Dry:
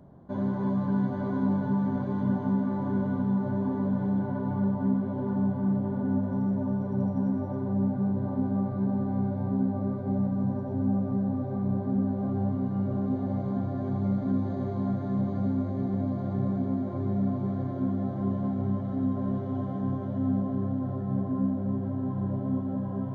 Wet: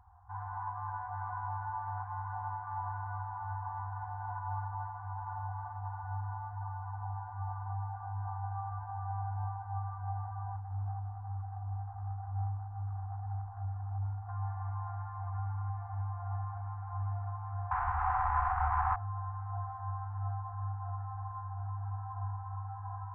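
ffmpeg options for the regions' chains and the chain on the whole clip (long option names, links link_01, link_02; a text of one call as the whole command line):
ffmpeg -i in.wav -filter_complex "[0:a]asettb=1/sr,asplit=3[link_01][link_02][link_03];[link_01]atrim=end=10.564[link_04];[link_02]atrim=start=10.56:end=14.29,asetpts=PTS-STARTPTS,afade=type=in:duration=0.004:curve=qsin,afade=type=out:start_time=3.726:duration=0.004:curve=qsin,equalizer=frequency=1100:width_type=o:width=0.36:gain=-15,adynamicsmooth=sensitivity=1:basefreq=790[link_05];[link_03]atrim=start=14.286[link_06];[link_04][link_05]acrossfade=duration=0.004:curve1=hsin:curve2=qsin[link_07];[link_07][link_06]acrossfade=duration=0.004:curve1=qsin:curve2=hsin,asettb=1/sr,asplit=3[link_08][link_09][link_10];[link_08]atrim=end=17.714[link_11];[link_09]atrim=start=17.71:end=18.96,asetpts=PTS-STARTPTS,afade=type=in:duration=0.004:curve=qsin,afade=type=out:start_time=1.246:duration=0.004:curve=qsin,afreqshift=-24,asplit=2[link_12][link_13];[link_13]highpass=frequency=720:poles=1,volume=40dB,asoftclip=type=tanh:threshold=-18dB[link_14];[link_12][link_14]amix=inputs=2:normalize=0,lowpass=frequency=1500:poles=1,volume=-6dB[link_15];[link_10]atrim=start=18.956[link_16];[link_11][link_15]acrossfade=duration=0.004:curve1=hsin:curve2=qsin[link_17];[link_17][link_16]acrossfade=duration=0.004:curve1=qsin:curve2=hsin,lowpass=frequency=1400:width=0.5412,lowpass=frequency=1400:width=1.3066,equalizer=frequency=1100:width_type=o:width=2.8:gain=3,afftfilt=real='re*(1-between(b*sr/4096,100,710))':imag='im*(1-between(b*sr/4096,100,710))':win_size=4096:overlap=0.75" out.wav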